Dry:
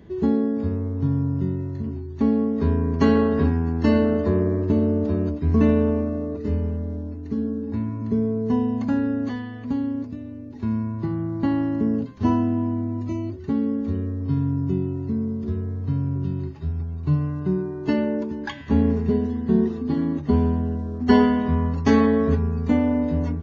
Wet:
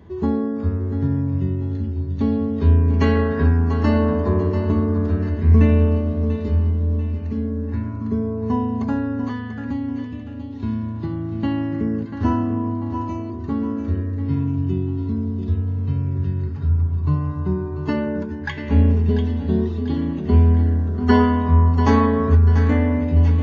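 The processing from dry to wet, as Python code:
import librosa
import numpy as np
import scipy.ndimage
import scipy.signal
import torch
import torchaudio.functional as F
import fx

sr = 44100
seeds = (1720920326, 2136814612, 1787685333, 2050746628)

y = fx.peak_eq(x, sr, hz=81.0, db=11.0, octaves=0.32)
y = fx.echo_feedback(y, sr, ms=691, feedback_pct=44, wet_db=-9.5)
y = fx.bell_lfo(y, sr, hz=0.23, low_hz=980.0, high_hz=3600.0, db=8)
y = y * librosa.db_to_amplitude(-1.0)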